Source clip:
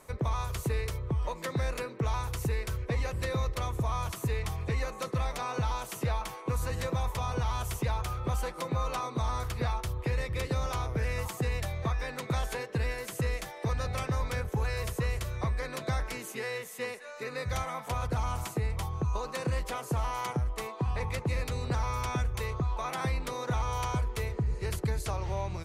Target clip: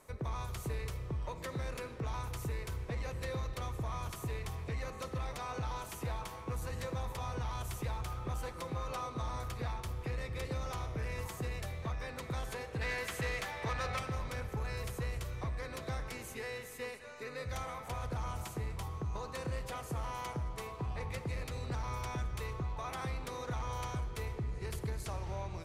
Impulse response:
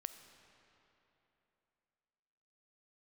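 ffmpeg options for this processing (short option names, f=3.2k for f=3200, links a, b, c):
-filter_complex "[0:a]asettb=1/sr,asplit=3[a][b][c];[a]atrim=end=12.814[d];[b]atrim=start=12.81:end=13.99,asetpts=PTS-STARTPTS,afade=t=in:d=0.004:c=qsin,afade=t=out:st=1.176:d=0.004:c=qsin,equalizer=f=1.8k:w=0.36:g=11[e];[c]atrim=start=13.986[f];[d][e]acrossfade=d=0.004:c1=hsin:c2=qsin[g];[g][f]acrossfade=d=0.004:c1=qsin:c2=hsin,asoftclip=type=tanh:threshold=-24.5dB[h];[1:a]atrim=start_sample=2205[i];[h][i]afir=irnorm=-1:irlink=0,volume=-2dB"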